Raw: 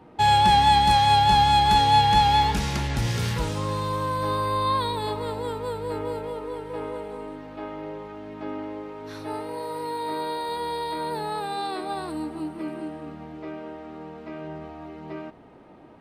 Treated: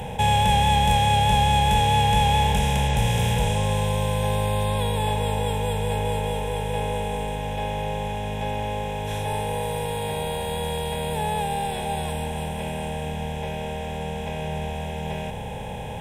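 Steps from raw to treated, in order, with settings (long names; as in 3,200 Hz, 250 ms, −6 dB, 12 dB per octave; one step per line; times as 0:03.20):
compressor on every frequency bin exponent 0.4
flat-topped bell 1,300 Hz −8 dB
phaser with its sweep stopped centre 1,200 Hz, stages 6
level +2.5 dB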